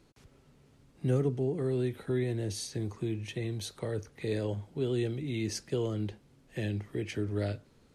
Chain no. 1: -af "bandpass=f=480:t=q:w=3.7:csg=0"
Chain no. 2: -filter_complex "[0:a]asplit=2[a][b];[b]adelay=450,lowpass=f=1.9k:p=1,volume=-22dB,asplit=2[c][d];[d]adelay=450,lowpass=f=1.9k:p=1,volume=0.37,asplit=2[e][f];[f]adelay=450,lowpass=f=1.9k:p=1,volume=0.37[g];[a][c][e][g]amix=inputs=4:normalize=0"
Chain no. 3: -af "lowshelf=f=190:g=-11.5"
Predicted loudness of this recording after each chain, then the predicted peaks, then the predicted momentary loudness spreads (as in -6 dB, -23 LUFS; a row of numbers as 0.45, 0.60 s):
-41.5, -34.0, -37.5 LUFS; -26.0, -17.0, -21.0 dBFS; 12, 7, 6 LU